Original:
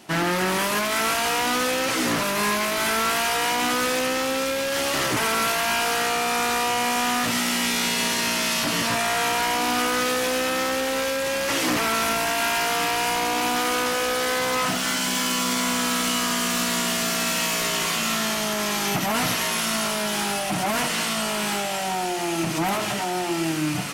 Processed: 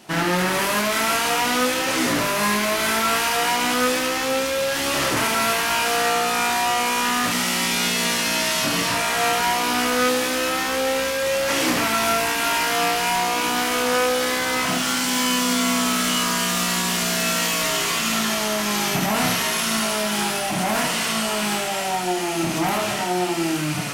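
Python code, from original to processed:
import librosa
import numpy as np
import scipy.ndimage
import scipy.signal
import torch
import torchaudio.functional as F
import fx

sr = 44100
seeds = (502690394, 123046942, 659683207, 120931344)

y = fx.room_early_taps(x, sr, ms=(28, 72), db=(-5.0, -5.5))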